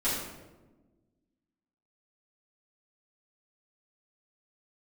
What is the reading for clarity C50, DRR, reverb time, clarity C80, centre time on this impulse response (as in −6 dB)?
1.0 dB, −13.0 dB, 1.2 s, 3.5 dB, 66 ms